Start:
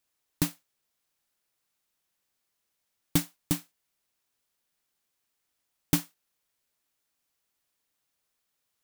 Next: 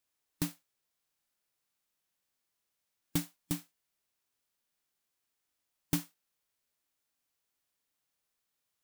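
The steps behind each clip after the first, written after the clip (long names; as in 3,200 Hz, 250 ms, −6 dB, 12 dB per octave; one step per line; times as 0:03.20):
harmonic and percussive parts rebalanced harmonic +6 dB
level −7.5 dB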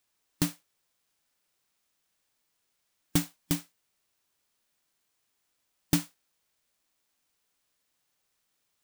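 running median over 3 samples
high-shelf EQ 9,800 Hz +9.5 dB
level +6 dB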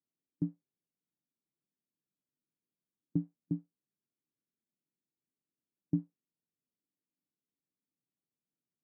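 flat-topped band-pass 210 Hz, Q 1
level −3.5 dB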